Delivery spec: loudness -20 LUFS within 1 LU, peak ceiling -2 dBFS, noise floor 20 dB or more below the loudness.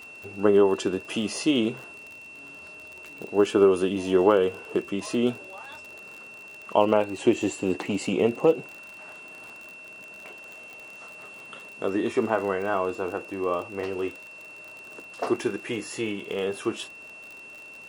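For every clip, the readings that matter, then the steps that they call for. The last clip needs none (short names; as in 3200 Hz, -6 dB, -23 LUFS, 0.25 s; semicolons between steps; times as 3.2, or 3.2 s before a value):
ticks 45/s; steady tone 2700 Hz; tone level -42 dBFS; loudness -25.5 LUFS; peak -5.5 dBFS; loudness target -20.0 LUFS
-> de-click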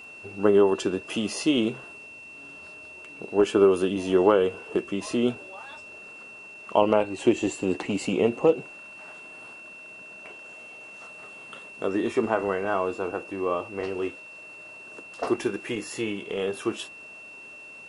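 ticks 0.056/s; steady tone 2700 Hz; tone level -42 dBFS
-> notch 2700 Hz, Q 30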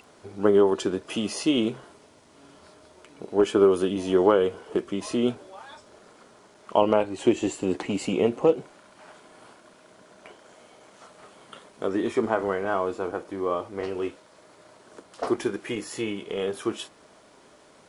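steady tone none; loudness -25.5 LUFS; peak -5.5 dBFS; loudness target -20.0 LUFS
-> gain +5.5 dB; limiter -2 dBFS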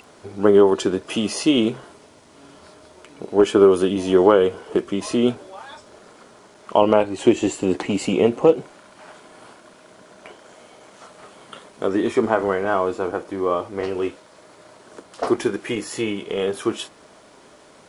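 loudness -20.0 LUFS; peak -2.0 dBFS; noise floor -50 dBFS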